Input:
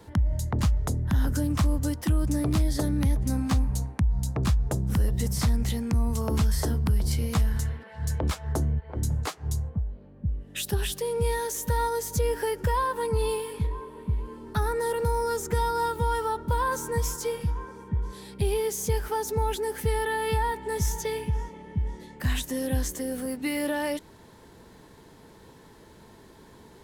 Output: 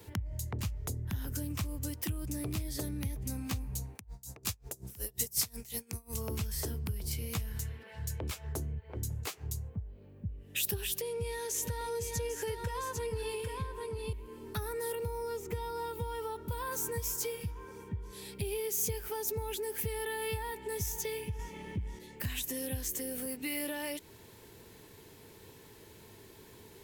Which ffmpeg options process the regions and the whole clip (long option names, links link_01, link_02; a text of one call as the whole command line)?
ffmpeg -i in.wav -filter_complex "[0:a]asettb=1/sr,asplit=3[link_01][link_02][link_03];[link_01]atrim=end=3.954[link_04];[link_02]atrim=start=3.95:end=6.14,asetpts=PTS-STARTPTS,afade=type=in:duration=0.004:curve=qsin,afade=type=out:start_time=2.186:duration=0.004:curve=qsin,bass=frequency=250:gain=-9,treble=frequency=4000:gain=8,aeval=exprs='val(0)*pow(10,-25*(0.5-0.5*cos(2*PI*5.5*n/s))/20)':channel_layout=same[link_05];[link_03]atrim=start=6.136[link_06];[link_04][link_05]acrossfade=duration=0.004:curve1=hsin:curve2=qsin[link_07];[link_07][link_06]acrossfade=duration=0.004:curve1=qsin:curve2=hsin,asettb=1/sr,asplit=3[link_08][link_09][link_10];[link_08]atrim=end=11.014[link_11];[link_09]atrim=start=11.01:end=14.13,asetpts=PTS-STARTPTS,afade=type=in:duration=0.004:curve=qsin,afade=type=out:start_time=3.116:duration=0.004:curve=qsin,lowpass=8600,aecho=1:1:799:0.501,atrim=end_sample=137592,acompressor=mode=upward:threshold=-28dB:ratio=2.5:attack=3.2:release=140:knee=2.83:detection=peak[link_12];[link_10]atrim=start=14.126[link_13];[link_11][link_12]acrossfade=duration=0.004:curve1=hsin:curve2=qsin[link_14];[link_14][link_13]acrossfade=duration=0.004:curve1=qsin:curve2=hsin,asettb=1/sr,asplit=3[link_15][link_16][link_17];[link_15]atrim=end=14.954[link_18];[link_16]atrim=start=14.95:end=16.36,asetpts=PTS-STARTPTS,afade=type=in:duration=0.004:curve=qsin,afade=type=out:start_time=1.406:duration=0.004:curve=qsin,acrossover=split=3600[link_19][link_20];[link_20]acompressor=threshold=-51dB:ratio=4:attack=1:release=60[link_21];[link_19][link_21]amix=inputs=2:normalize=0,equalizer=frequency=1600:width=4.8:gain=-9.5[link_22];[link_17]atrim=start=16.356[link_23];[link_18][link_22]acrossfade=duration=0.004:curve1=hsin:curve2=qsin[link_24];[link_24][link_23]acrossfade=duration=0.004:curve1=qsin:curve2=hsin,asettb=1/sr,asplit=3[link_25][link_26][link_27];[link_25]atrim=end=21.394[link_28];[link_26]atrim=start=21.39:end=21.99,asetpts=PTS-STARTPTS,afade=type=in:duration=0.004:curve=qsin,afade=type=out:start_time=0.596:duration=0.004:curve=qsin,equalizer=frequency=460:width=1.2:gain=-5.5,aeval=exprs='0.126*sin(PI/2*1.41*val(0)/0.126)':channel_layout=same[link_29];[link_27]atrim=start=21.986[link_30];[link_28][link_29]acrossfade=duration=0.004:curve1=hsin:curve2=qsin[link_31];[link_31][link_30]acrossfade=duration=0.004:curve1=qsin:curve2=hsin,equalizer=frequency=100:width_type=o:width=0.67:gain=9,equalizer=frequency=400:width_type=o:width=0.67:gain=7,equalizer=frequency=2500:width_type=o:width=0.67:gain=8,equalizer=frequency=10000:width_type=o:width=0.67:gain=-4,acompressor=threshold=-31dB:ratio=2,aemphasis=mode=production:type=75fm,volume=-7.5dB" out.wav